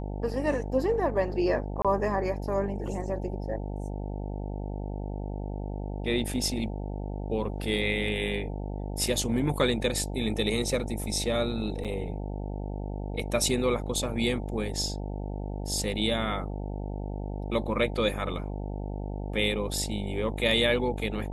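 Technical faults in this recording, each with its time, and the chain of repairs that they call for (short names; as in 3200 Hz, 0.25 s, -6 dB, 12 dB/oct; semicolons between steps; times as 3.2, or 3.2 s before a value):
buzz 50 Hz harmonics 18 -34 dBFS
1.82–1.85 gap 26 ms
11.84–11.85 gap 7.3 ms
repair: de-hum 50 Hz, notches 18; interpolate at 1.82, 26 ms; interpolate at 11.84, 7.3 ms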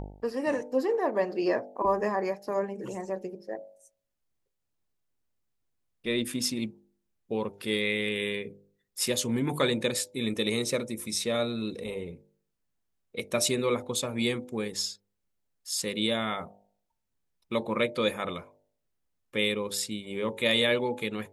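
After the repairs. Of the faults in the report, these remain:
none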